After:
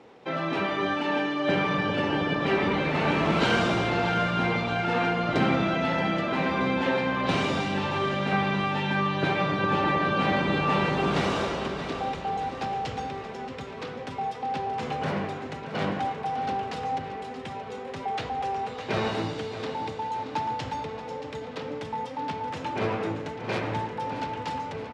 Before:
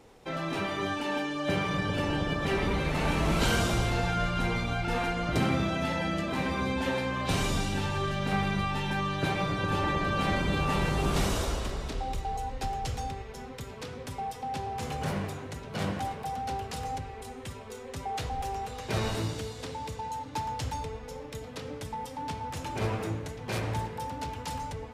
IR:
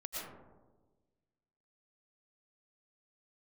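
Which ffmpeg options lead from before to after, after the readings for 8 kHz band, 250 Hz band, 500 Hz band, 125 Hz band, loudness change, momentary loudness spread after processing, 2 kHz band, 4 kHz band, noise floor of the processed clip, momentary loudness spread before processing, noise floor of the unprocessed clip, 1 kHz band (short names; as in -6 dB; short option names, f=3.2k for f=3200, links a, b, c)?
-7.5 dB, +4.0 dB, +5.5 dB, -0.5 dB, +3.5 dB, 11 LU, +5.0 dB, +2.5 dB, -38 dBFS, 11 LU, -43 dBFS, +5.0 dB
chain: -af "highpass=170,lowpass=3.5k,aecho=1:1:627|1254|1881|2508|3135|3762:0.251|0.146|0.0845|0.049|0.0284|0.0165,volume=5dB"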